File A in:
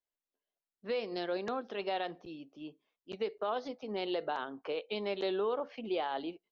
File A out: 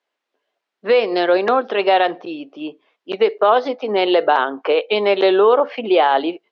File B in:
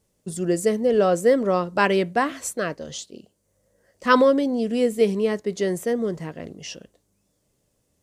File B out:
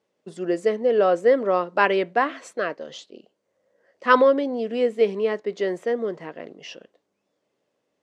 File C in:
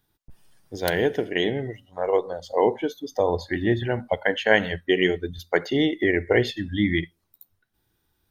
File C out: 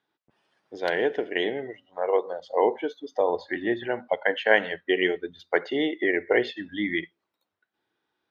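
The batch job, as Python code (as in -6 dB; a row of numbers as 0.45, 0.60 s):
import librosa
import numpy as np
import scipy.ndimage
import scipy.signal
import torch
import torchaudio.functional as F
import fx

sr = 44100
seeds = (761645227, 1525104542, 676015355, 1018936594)

y = fx.bandpass_edges(x, sr, low_hz=350.0, high_hz=3100.0)
y = y * 10.0 ** (-3 / 20.0) / np.max(np.abs(y))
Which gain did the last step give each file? +21.5, +1.5, -0.5 dB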